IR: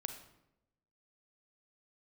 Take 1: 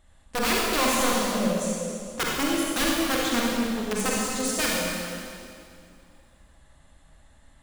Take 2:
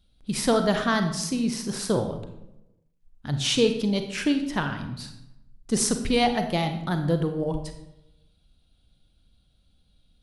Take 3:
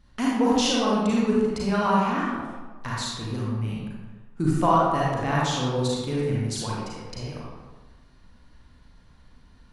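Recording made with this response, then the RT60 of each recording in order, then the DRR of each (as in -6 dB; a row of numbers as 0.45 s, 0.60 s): 2; 2.3 s, 0.90 s, 1.3 s; -4.5 dB, 6.5 dB, -5.5 dB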